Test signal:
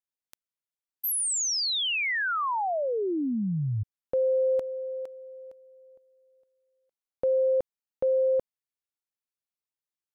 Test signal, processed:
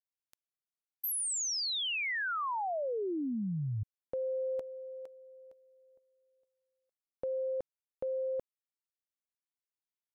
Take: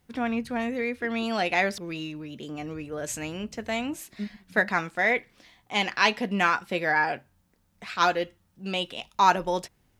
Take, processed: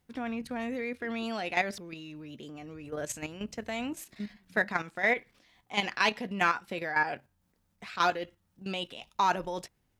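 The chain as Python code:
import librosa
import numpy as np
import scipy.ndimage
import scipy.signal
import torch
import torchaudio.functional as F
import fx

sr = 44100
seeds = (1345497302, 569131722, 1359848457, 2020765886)

p1 = np.clip(10.0 ** (13.5 / 20.0) * x, -1.0, 1.0) / 10.0 ** (13.5 / 20.0)
p2 = x + F.gain(torch.from_numpy(p1), -8.5).numpy()
p3 = fx.level_steps(p2, sr, step_db=10)
y = F.gain(torch.from_numpy(p3), -4.0).numpy()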